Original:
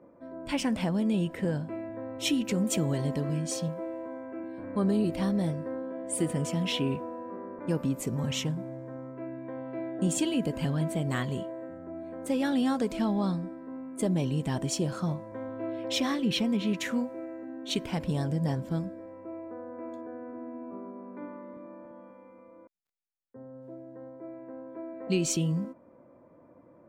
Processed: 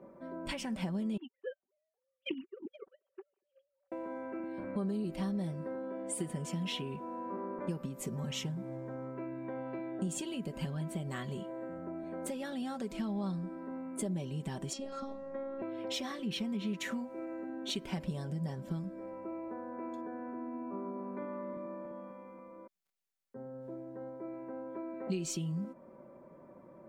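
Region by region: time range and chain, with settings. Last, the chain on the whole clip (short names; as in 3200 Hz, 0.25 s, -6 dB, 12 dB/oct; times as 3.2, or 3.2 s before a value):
1.17–3.92 sine-wave speech + gate -30 dBFS, range -49 dB
14.73–15.62 LPF 5200 Hz + robotiser 272 Hz
whole clip: compressor 6:1, threshold -37 dBFS; comb 5.2 ms, depth 54%; gain +1 dB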